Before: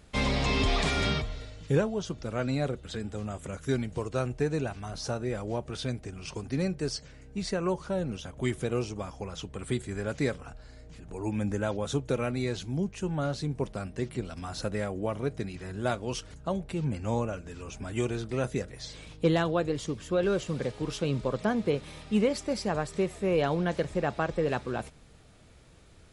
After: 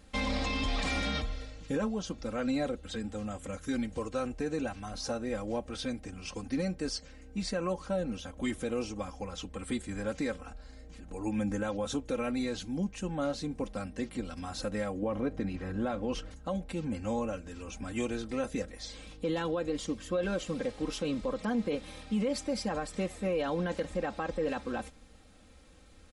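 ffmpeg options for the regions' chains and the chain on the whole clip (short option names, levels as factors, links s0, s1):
-filter_complex "[0:a]asettb=1/sr,asplit=3[s0][s1][s2];[s0]atrim=end=15.024[s3];[s1]atrim=start=15.02:end=16.31,asetpts=PTS-STARTPTS,afade=t=in:d=0.004:c=qsin,afade=t=out:st=1.286:d=0.004:c=qsin,lowpass=f=1500:p=1,acontrast=31[s4];[s2]atrim=start=16.306[s5];[s3][s4]acrossfade=d=0.004:c1=hsin:c2=qsin[s6];[s6][s5]acrossfade=d=0.004:c1=qsin:c2=hsin,aecho=1:1:3.8:0.79,alimiter=limit=0.1:level=0:latency=1:release=40,volume=0.708"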